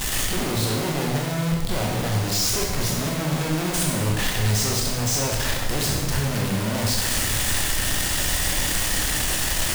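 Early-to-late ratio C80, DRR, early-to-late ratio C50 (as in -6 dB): 4.0 dB, -2.0 dB, 1.5 dB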